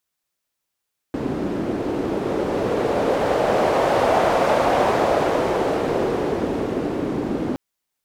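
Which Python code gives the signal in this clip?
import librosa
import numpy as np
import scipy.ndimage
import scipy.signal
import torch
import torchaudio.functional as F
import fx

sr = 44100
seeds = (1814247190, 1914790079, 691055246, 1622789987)

y = fx.wind(sr, seeds[0], length_s=6.42, low_hz=310.0, high_hz=650.0, q=1.9, gusts=1, swing_db=7.0)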